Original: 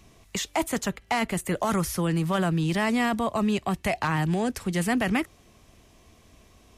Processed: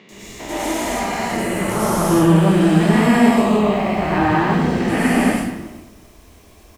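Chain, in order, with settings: stepped spectrum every 0.4 s; 3.37–4.79 LPF 4800 Hz 12 dB/oct; in parallel at -3.5 dB: crossover distortion -48.5 dBFS; on the sum: bit-crush 10-bit; three bands offset in time mids, highs, lows 90/120 ms, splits 160/3500 Hz; reverb RT60 1.0 s, pre-delay 96 ms, DRR -8.5 dB; gain +1 dB

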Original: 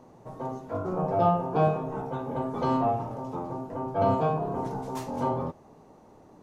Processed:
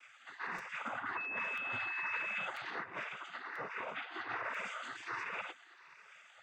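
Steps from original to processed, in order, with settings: moving spectral ripple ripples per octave 0.71, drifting +1.3 Hz, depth 17 dB; negative-ratio compressor -25 dBFS, ratio -0.5; spectral gate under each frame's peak -30 dB weak; limiter -45.5 dBFS, peak gain reduction 9.5 dB; resonant high shelf 3100 Hz -14 dB, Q 1.5; on a send: thinning echo 0.7 s, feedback 67%, high-pass 420 Hz, level -24 dB; on the sum: noise vocoder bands 16; 1.16–2.45 whine 2600 Hz -53 dBFS; 3.03–4.3 air absorption 75 m; crackling interface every 0.99 s, samples 256, repeat, from 0.58; gain +15 dB

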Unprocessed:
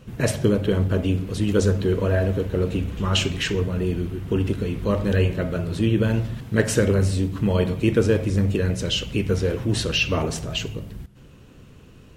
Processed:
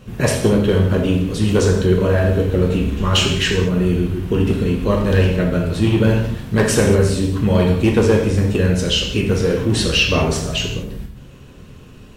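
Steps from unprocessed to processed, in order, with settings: overloaded stage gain 12.5 dB; non-linear reverb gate 0.24 s falling, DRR 0.5 dB; gain +4 dB

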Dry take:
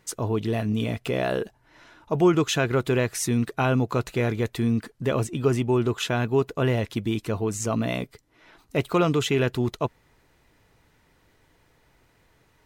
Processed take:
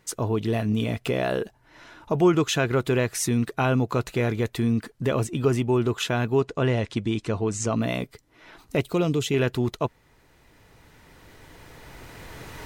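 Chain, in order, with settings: recorder AGC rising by 8.3 dB/s; 6.38–7.76 LPF 8600 Hz 24 dB/oct; 8.81–9.34 bell 1300 Hz -10 dB 1.7 oct

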